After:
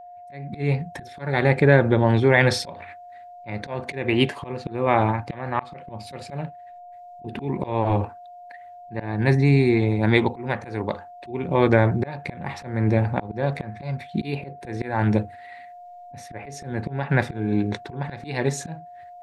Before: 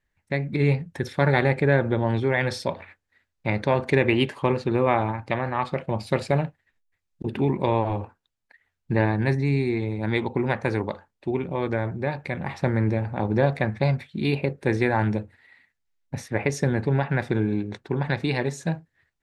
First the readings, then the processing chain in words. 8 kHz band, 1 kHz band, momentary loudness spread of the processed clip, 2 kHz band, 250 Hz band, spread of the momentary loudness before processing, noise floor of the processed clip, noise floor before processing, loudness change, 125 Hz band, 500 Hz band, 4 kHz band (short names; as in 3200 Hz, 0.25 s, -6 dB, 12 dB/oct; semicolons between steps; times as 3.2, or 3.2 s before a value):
n/a, +1.5 dB, 21 LU, +1.5 dB, +1.5 dB, 9 LU, -43 dBFS, -79 dBFS, +2.0 dB, +1.5 dB, +1.0 dB, +2.5 dB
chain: AGC; auto swell 0.358 s; whine 710 Hz -40 dBFS